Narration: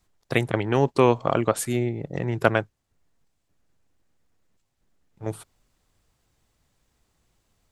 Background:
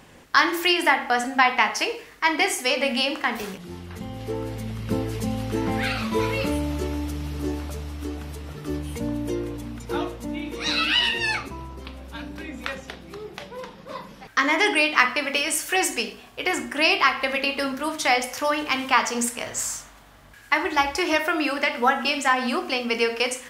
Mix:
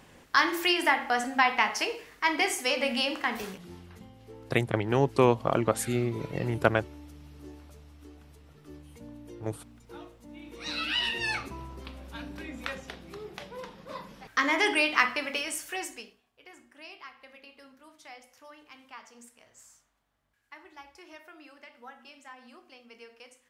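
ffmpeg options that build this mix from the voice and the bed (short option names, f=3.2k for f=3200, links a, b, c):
-filter_complex "[0:a]adelay=4200,volume=-3.5dB[a];[1:a]volume=8.5dB,afade=t=out:st=3.4:d=0.75:silence=0.211349,afade=t=in:st=10.24:d=1.21:silence=0.211349,afade=t=out:st=14.94:d=1.28:silence=0.0749894[b];[a][b]amix=inputs=2:normalize=0"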